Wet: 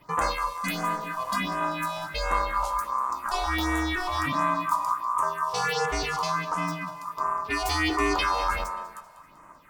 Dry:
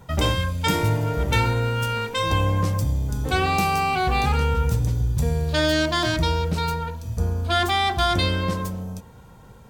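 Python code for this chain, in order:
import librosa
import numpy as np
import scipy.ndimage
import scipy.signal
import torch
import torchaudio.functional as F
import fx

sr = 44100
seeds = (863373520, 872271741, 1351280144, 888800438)

y = fx.peak_eq(x, sr, hz=220.0, db=-13.0, octaves=1.2, at=(0.48, 1.61))
y = y * np.sin(2.0 * np.pi * 1100.0 * np.arange(len(y)) / sr)
y = fx.phaser_stages(y, sr, stages=4, low_hz=280.0, high_hz=4400.0, hz=1.4, feedback_pct=25)
y = fx.echo_thinned(y, sr, ms=194, feedback_pct=51, hz=220.0, wet_db=-16.0)
y = fx.env_flatten(y, sr, amount_pct=50, at=(7.65, 8.64))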